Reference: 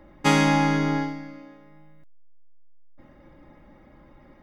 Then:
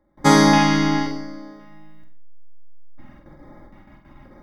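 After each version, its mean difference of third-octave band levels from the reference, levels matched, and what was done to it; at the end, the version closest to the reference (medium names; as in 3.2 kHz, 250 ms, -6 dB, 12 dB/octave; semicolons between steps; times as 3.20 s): 2.5 dB: gate with hold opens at -42 dBFS; LFO notch square 0.94 Hz 480–2700 Hz; on a send: flutter echo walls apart 8.2 m, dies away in 0.48 s; on the sum: trim +6 dB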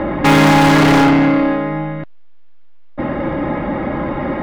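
11.5 dB: low-pass 4.1 kHz 24 dB/octave; bass shelf 300 Hz +11 dB; in parallel at -8.5 dB: integer overflow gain 16 dB; on the sum: overdrive pedal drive 37 dB, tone 1.5 kHz, clips at -6 dBFS; trim +3 dB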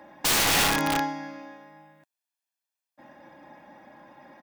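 6.0 dB: high-pass 330 Hz 12 dB/octave; comb 1.2 ms, depth 58%; in parallel at -1 dB: compression 5:1, threshold -35 dBFS, peak gain reduction 17.5 dB; on the sum: integer overflow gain 17 dB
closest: first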